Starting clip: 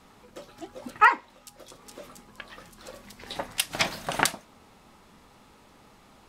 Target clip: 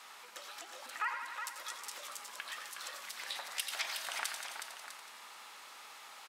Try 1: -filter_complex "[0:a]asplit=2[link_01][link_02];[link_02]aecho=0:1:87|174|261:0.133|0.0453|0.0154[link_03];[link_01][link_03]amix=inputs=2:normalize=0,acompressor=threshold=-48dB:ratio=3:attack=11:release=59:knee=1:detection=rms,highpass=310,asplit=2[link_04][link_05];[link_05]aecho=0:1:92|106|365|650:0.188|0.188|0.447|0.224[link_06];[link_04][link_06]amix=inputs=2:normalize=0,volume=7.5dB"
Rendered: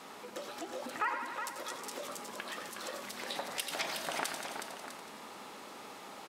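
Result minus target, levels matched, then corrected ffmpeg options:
250 Hz band +19.0 dB
-filter_complex "[0:a]asplit=2[link_01][link_02];[link_02]aecho=0:1:87|174|261:0.133|0.0453|0.0154[link_03];[link_01][link_03]amix=inputs=2:normalize=0,acompressor=threshold=-48dB:ratio=3:attack=11:release=59:knee=1:detection=rms,highpass=1200,asplit=2[link_04][link_05];[link_05]aecho=0:1:92|106|365|650:0.188|0.188|0.447|0.224[link_06];[link_04][link_06]amix=inputs=2:normalize=0,volume=7.5dB"

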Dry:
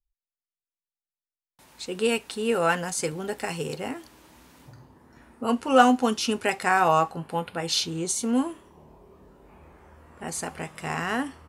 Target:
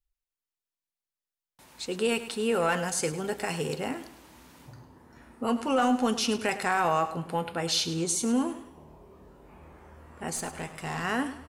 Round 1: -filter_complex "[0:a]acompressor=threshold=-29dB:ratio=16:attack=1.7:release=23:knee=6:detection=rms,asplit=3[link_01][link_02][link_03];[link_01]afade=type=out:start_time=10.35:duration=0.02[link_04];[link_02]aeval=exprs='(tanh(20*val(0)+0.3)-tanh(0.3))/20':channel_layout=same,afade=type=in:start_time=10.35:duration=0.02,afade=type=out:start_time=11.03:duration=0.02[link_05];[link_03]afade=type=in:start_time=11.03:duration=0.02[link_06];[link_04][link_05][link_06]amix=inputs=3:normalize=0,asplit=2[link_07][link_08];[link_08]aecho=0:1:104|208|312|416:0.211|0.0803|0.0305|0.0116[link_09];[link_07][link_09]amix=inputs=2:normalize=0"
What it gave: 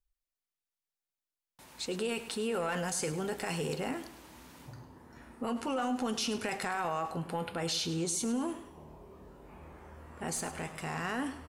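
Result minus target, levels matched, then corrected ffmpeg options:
downward compressor: peak gain reduction +9 dB
-filter_complex "[0:a]acompressor=threshold=-19.5dB:ratio=16:attack=1.7:release=23:knee=6:detection=rms,asplit=3[link_01][link_02][link_03];[link_01]afade=type=out:start_time=10.35:duration=0.02[link_04];[link_02]aeval=exprs='(tanh(20*val(0)+0.3)-tanh(0.3))/20':channel_layout=same,afade=type=in:start_time=10.35:duration=0.02,afade=type=out:start_time=11.03:duration=0.02[link_05];[link_03]afade=type=in:start_time=11.03:duration=0.02[link_06];[link_04][link_05][link_06]amix=inputs=3:normalize=0,asplit=2[link_07][link_08];[link_08]aecho=0:1:104|208|312|416:0.211|0.0803|0.0305|0.0116[link_09];[link_07][link_09]amix=inputs=2:normalize=0"

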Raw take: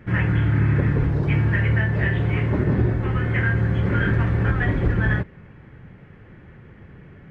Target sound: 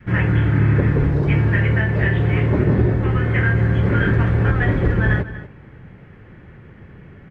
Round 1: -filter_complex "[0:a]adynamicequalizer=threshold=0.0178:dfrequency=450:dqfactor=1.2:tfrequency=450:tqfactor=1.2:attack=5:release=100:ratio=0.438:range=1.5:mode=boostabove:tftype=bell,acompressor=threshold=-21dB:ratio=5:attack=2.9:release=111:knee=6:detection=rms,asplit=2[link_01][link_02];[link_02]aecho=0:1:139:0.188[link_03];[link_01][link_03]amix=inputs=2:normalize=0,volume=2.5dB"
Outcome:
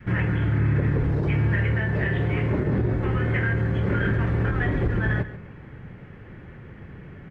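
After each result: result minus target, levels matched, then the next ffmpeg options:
downward compressor: peak gain reduction +9 dB; echo 101 ms early
-filter_complex "[0:a]adynamicequalizer=threshold=0.0178:dfrequency=450:dqfactor=1.2:tfrequency=450:tqfactor=1.2:attack=5:release=100:ratio=0.438:range=1.5:mode=boostabove:tftype=bell,asplit=2[link_01][link_02];[link_02]aecho=0:1:139:0.188[link_03];[link_01][link_03]amix=inputs=2:normalize=0,volume=2.5dB"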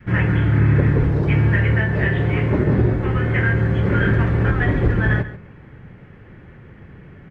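echo 101 ms early
-filter_complex "[0:a]adynamicequalizer=threshold=0.0178:dfrequency=450:dqfactor=1.2:tfrequency=450:tqfactor=1.2:attack=5:release=100:ratio=0.438:range=1.5:mode=boostabove:tftype=bell,asplit=2[link_01][link_02];[link_02]aecho=0:1:240:0.188[link_03];[link_01][link_03]amix=inputs=2:normalize=0,volume=2.5dB"

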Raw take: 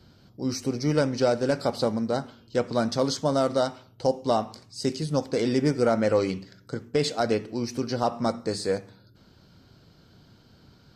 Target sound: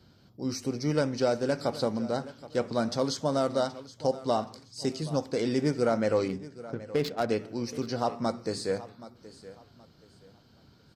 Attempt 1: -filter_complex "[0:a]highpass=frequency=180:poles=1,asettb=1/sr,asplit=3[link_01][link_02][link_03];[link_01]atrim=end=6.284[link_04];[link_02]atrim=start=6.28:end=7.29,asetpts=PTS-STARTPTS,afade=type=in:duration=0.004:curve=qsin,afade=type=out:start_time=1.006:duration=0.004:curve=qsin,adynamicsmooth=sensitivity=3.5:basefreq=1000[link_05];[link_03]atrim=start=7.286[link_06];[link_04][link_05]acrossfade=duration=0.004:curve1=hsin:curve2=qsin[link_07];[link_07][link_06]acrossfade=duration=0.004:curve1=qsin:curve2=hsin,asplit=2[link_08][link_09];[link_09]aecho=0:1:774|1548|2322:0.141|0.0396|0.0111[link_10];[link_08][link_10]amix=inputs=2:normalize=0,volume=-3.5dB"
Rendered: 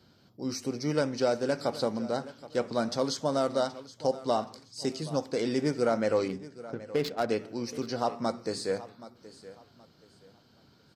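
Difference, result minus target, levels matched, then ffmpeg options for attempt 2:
125 Hz band −3.0 dB
-filter_complex "[0:a]highpass=frequency=46:poles=1,asettb=1/sr,asplit=3[link_01][link_02][link_03];[link_01]atrim=end=6.284[link_04];[link_02]atrim=start=6.28:end=7.29,asetpts=PTS-STARTPTS,afade=type=in:duration=0.004:curve=qsin,afade=type=out:start_time=1.006:duration=0.004:curve=qsin,adynamicsmooth=sensitivity=3.5:basefreq=1000[link_05];[link_03]atrim=start=7.286[link_06];[link_04][link_05]acrossfade=duration=0.004:curve1=hsin:curve2=qsin[link_07];[link_07][link_06]acrossfade=duration=0.004:curve1=qsin:curve2=hsin,asplit=2[link_08][link_09];[link_09]aecho=0:1:774|1548|2322:0.141|0.0396|0.0111[link_10];[link_08][link_10]amix=inputs=2:normalize=0,volume=-3.5dB"

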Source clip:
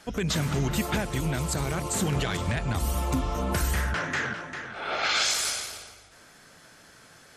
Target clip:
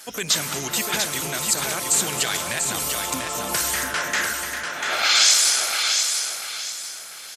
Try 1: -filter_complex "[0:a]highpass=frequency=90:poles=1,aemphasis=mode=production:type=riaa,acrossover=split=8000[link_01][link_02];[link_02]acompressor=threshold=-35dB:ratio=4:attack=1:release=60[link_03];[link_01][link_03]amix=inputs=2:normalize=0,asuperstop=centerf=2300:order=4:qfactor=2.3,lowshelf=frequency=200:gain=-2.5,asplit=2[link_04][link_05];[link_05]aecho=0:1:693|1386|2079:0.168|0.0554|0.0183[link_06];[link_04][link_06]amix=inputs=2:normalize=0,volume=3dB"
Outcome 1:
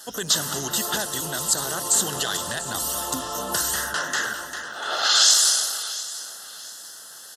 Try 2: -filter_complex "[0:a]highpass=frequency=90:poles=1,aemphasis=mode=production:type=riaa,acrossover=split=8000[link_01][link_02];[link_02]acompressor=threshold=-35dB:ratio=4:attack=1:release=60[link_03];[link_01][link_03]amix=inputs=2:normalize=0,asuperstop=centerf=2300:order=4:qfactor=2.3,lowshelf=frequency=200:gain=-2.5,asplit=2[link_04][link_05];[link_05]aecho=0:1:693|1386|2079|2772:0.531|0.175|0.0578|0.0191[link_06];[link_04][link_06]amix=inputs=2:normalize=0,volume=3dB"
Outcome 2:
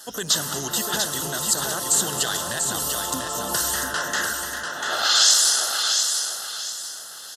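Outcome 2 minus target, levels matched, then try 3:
2,000 Hz band −2.5 dB
-filter_complex "[0:a]highpass=frequency=90:poles=1,aemphasis=mode=production:type=riaa,acrossover=split=8000[link_01][link_02];[link_02]acompressor=threshold=-35dB:ratio=4:attack=1:release=60[link_03];[link_01][link_03]amix=inputs=2:normalize=0,lowshelf=frequency=200:gain=-2.5,asplit=2[link_04][link_05];[link_05]aecho=0:1:693|1386|2079|2772:0.531|0.175|0.0578|0.0191[link_06];[link_04][link_06]amix=inputs=2:normalize=0,volume=3dB"

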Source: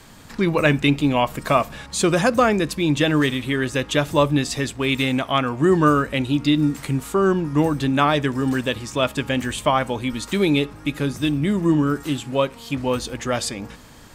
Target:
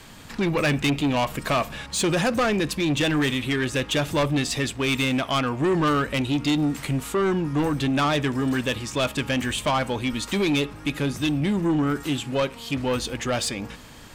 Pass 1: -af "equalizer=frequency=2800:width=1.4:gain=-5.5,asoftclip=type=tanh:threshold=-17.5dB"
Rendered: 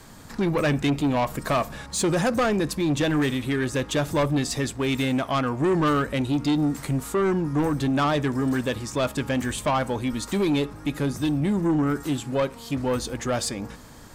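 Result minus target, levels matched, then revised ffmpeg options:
2,000 Hz band −3.0 dB
-af "equalizer=frequency=2800:width=1.4:gain=4,asoftclip=type=tanh:threshold=-17.5dB"

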